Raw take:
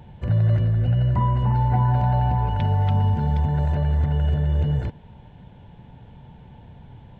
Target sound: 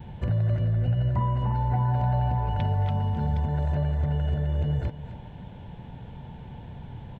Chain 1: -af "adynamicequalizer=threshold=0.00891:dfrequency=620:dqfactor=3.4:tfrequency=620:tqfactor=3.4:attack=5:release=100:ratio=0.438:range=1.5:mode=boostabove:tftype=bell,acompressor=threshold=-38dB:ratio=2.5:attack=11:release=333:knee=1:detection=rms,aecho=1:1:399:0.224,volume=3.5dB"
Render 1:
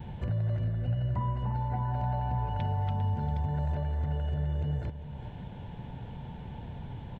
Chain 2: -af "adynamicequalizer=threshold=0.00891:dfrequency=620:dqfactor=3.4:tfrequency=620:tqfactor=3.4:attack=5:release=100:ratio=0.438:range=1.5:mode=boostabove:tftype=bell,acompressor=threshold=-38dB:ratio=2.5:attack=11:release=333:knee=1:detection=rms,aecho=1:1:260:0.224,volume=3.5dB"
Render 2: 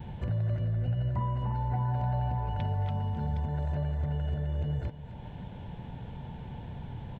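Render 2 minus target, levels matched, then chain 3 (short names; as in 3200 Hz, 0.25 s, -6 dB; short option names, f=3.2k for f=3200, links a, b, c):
compressor: peak gain reduction +5.5 dB
-af "adynamicequalizer=threshold=0.00891:dfrequency=620:dqfactor=3.4:tfrequency=620:tqfactor=3.4:attack=5:release=100:ratio=0.438:range=1.5:mode=boostabove:tftype=bell,acompressor=threshold=-29dB:ratio=2.5:attack=11:release=333:knee=1:detection=rms,aecho=1:1:260:0.224,volume=3.5dB"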